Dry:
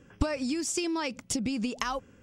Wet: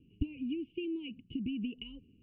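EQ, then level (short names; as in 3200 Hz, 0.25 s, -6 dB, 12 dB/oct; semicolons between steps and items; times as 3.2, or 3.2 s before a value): inverse Chebyshev band-stop 560–1600 Hz, stop band 40 dB; Butterworth band-stop 1900 Hz, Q 1.4; rippled Chebyshev low-pass 3000 Hz, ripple 9 dB; +3.0 dB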